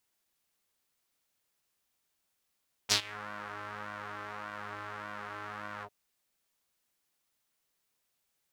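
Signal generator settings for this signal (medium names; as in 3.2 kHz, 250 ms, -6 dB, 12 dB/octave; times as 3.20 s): synth patch with pulse-width modulation G#2, detune 18 cents, noise -17 dB, filter bandpass, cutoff 520 Hz, Q 2.3, filter envelope 3.5 oct, attack 29 ms, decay 0.09 s, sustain -24 dB, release 0.06 s, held 2.94 s, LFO 1.7 Hz, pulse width 34%, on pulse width 10%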